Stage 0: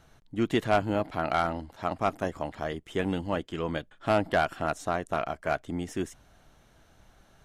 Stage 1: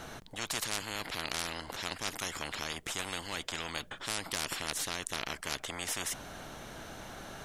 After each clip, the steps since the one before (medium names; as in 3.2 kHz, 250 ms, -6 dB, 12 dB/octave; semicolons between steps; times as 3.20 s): spectrum-flattening compressor 10:1; trim +1 dB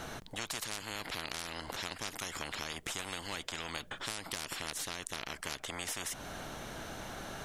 compression, threshold -37 dBFS, peak gain reduction 8.5 dB; trim +2 dB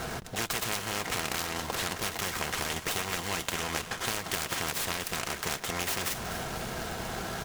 comb of notches 290 Hz; feedback delay 246 ms, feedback 59%, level -12.5 dB; delay time shaken by noise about 3.4 kHz, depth 0.051 ms; trim +9 dB